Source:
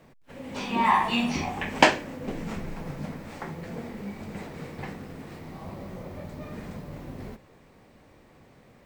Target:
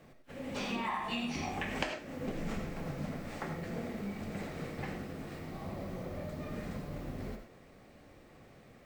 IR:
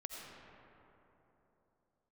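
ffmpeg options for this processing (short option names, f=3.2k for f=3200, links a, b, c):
-filter_complex "[0:a]bandreject=f=950:w=9.3,acompressor=threshold=-30dB:ratio=20[a];[1:a]atrim=start_sample=2205,afade=t=out:st=0.16:d=0.01,atrim=end_sample=7497[b];[a][b]afir=irnorm=-1:irlink=0,volume=3dB"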